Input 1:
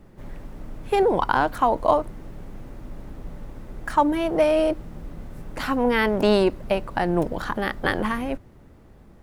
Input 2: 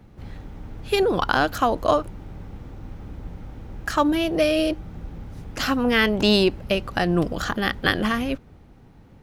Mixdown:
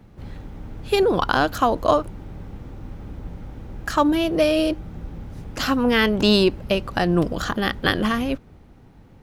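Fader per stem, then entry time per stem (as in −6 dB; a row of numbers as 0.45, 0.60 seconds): −12.0, +0.5 decibels; 0.00, 0.00 seconds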